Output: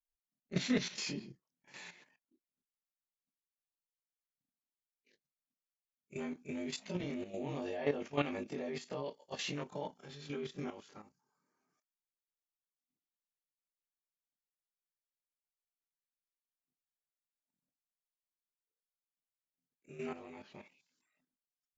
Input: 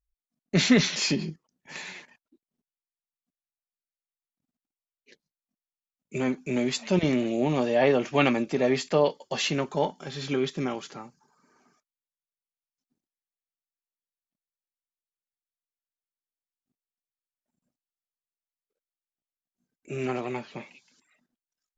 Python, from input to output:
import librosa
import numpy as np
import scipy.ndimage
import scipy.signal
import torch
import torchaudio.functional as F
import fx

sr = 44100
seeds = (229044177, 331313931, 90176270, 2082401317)

y = fx.frame_reverse(x, sr, frame_ms=56.0)
y = fx.level_steps(y, sr, step_db=11)
y = F.gain(torch.from_numpy(y), -6.5).numpy()